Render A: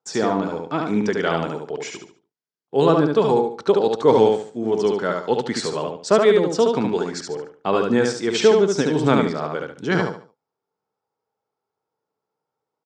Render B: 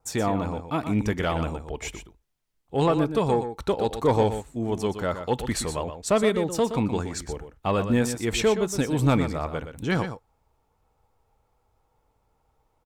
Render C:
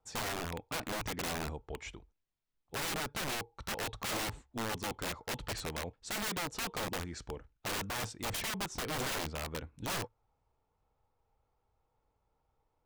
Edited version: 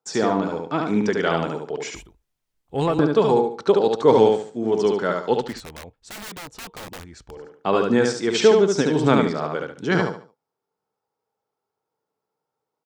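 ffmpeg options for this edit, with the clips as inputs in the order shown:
-filter_complex "[0:a]asplit=3[s0][s1][s2];[s0]atrim=end=1.952[s3];[1:a]atrim=start=1.948:end=2.992[s4];[s1]atrim=start=2.988:end=5.62[s5];[2:a]atrim=start=5.38:end=7.55[s6];[s2]atrim=start=7.31[s7];[s3][s4]acrossfade=d=0.004:c1=hsin:c2=hsin[s8];[s8][s5]acrossfade=d=0.004:c1=hsin:c2=hsin[s9];[s9][s6]acrossfade=d=0.24:c1=tri:c2=tri[s10];[s10][s7]acrossfade=d=0.24:c1=tri:c2=tri"

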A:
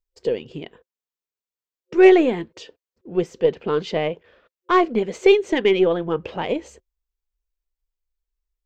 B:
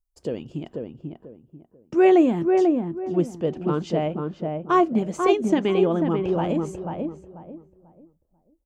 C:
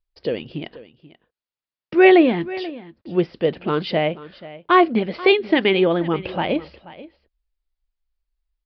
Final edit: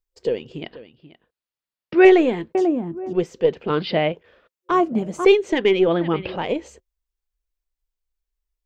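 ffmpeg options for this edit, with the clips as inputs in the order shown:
-filter_complex "[2:a]asplit=3[s0][s1][s2];[1:a]asplit=2[s3][s4];[0:a]asplit=6[s5][s6][s7][s8][s9][s10];[s5]atrim=end=0.622[s11];[s0]atrim=start=0.618:end=2.052[s12];[s6]atrim=start=2.048:end=2.552[s13];[s3]atrim=start=2.548:end=3.132[s14];[s7]atrim=start=3.128:end=3.702[s15];[s1]atrim=start=3.698:end=4.122[s16];[s8]atrim=start=4.118:end=4.712[s17];[s4]atrim=start=4.708:end=5.252[s18];[s9]atrim=start=5.248:end=5.882[s19];[s2]atrim=start=5.878:end=6.362[s20];[s10]atrim=start=6.358[s21];[s11][s12]acrossfade=d=0.004:c1=hsin:c2=hsin[s22];[s22][s13]acrossfade=d=0.004:c1=hsin:c2=hsin[s23];[s23][s14]acrossfade=d=0.004:c1=hsin:c2=hsin[s24];[s24][s15]acrossfade=d=0.004:c1=hsin:c2=hsin[s25];[s25][s16]acrossfade=d=0.004:c1=hsin:c2=hsin[s26];[s26][s17]acrossfade=d=0.004:c1=hsin:c2=hsin[s27];[s27][s18]acrossfade=d=0.004:c1=hsin:c2=hsin[s28];[s28][s19]acrossfade=d=0.004:c1=hsin:c2=hsin[s29];[s29][s20]acrossfade=d=0.004:c1=hsin:c2=hsin[s30];[s30][s21]acrossfade=d=0.004:c1=hsin:c2=hsin"

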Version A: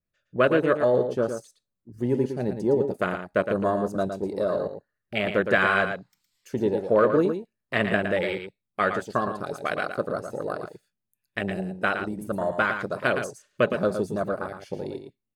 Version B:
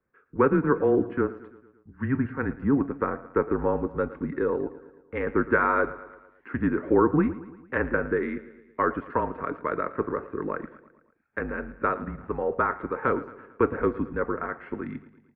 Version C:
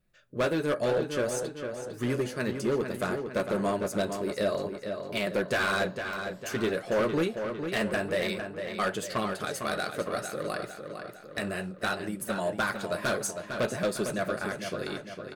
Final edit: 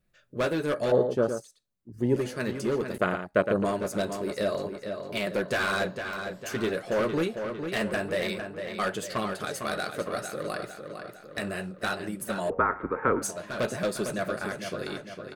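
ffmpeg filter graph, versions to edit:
-filter_complex "[0:a]asplit=2[s0][s1];[2:a]asplit=4[s2][s3][s4][s5];[s2]atrim=end=0.922[s6];[s0]atrim=start=0.918:end=2.162[s7];[s3]atrim=start=2.158:end=2.982[s8];[s1]atrim=start=2.978:end=3.652[s9];[s4]atrim=start=3.648:end=12.502[s10];[1:a]atrim=start=12.498:end=13.222[s11];[s5]atrim=start=13.218[s12];[s6][s7]acrossfade=d=0.004:c1=hsin:c2=hsin[s13];[s13][s8]acrossfade=d=0.004:c1=hsin:c2=hsin[s14];[s14][s9]acrossfade=d=0.004:c1=hsin:c2=hsin[s15];[s15][s10]acrossfade=d=0.004:c1=hsin:c2=hsin[s16];[s16][s11]acrossfade=d=0.004:c1=hsin:c2=hsin[s17];[s17][s12]acrossfade=d=0.004:c1=hsin:c2=hsin"

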